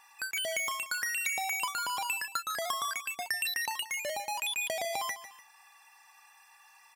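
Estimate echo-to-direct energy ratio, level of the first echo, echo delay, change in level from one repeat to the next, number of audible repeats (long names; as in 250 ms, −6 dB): −13.0 dB, −13.5 dB, 148 ms, −7.5 dB, 2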